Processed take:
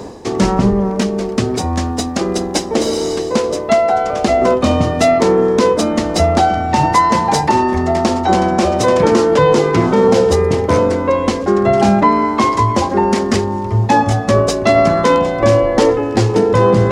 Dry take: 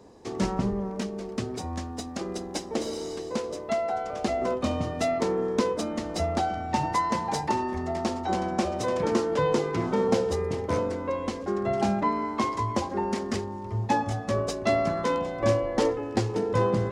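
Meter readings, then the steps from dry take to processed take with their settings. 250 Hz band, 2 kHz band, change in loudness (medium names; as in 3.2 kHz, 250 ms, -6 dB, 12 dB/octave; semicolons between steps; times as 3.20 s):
+14.0 dB, +14.0 dB, +14.0 dB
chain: reverse; upward compressor, threshold -29 dBFS; reverse; loudness maximiser +16 dB; trim -1 dB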